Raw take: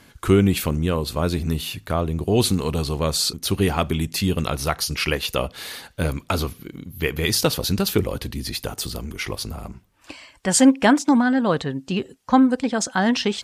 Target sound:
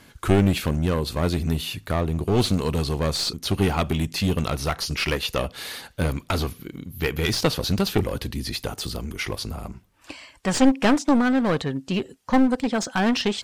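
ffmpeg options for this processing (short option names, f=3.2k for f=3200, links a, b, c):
-filter_complex "[0:a]aeval=exprs='clip(val(0),-1,0.1)':c=same,acrossover=split=5800[a][b];[b]acompressor=threshold=-36dB:ratio=4:attack=1:release=60[c];[a][c]amix=inputs=2:normalize=0"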